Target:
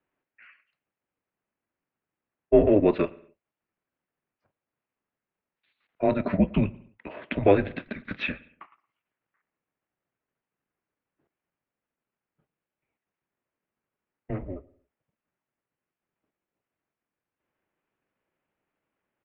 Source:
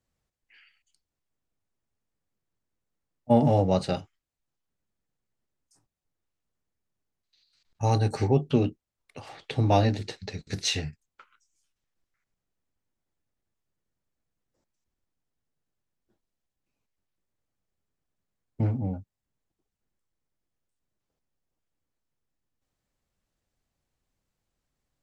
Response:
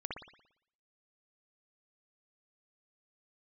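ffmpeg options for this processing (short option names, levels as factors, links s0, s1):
-filter_complex "[0:a]atempo=1.3,asplit=2[s0][s1];[1:a]atrim=start_sample=2205,afade=t=out:st=0.28:d=0.01,atrim=end_sample=12789,adelay=50[s2];[s1][s2]afir=irnorm=-1:irlink=0,volume=0.0891[s3];[s0][s3]amix=inputs=2:normalize=0,highpass=f=350:t=q:w=0.5412,highpass=f=350:t=q:w=1.307,lowpass=f=2900:t=q:w=0.5176,lowpass=f=2900:t=q:w=0.7071,lowpass=f=2900:t=q:w=1.932,afreqshift=-200,volume=2"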